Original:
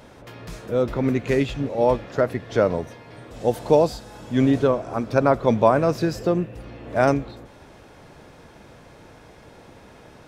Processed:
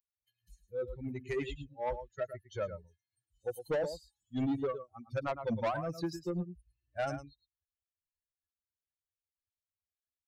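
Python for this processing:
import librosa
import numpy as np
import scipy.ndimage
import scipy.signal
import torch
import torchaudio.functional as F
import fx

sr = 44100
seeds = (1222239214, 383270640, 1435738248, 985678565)

y = fx.bin_expand(x, sr, power=3.0)
y = y + 10.0 ** (-12.5 / 20.0) * np.pad(y, (int(109 * sr / 1000.0), 0))[:len(y)]
y = 10.0 ** (-21.5 / 20.0) * np.tanh(y / 10.0 ** (-21.5 / 20.0))
y = F.gain(torch.from_numpy(y), -6.0).numpy()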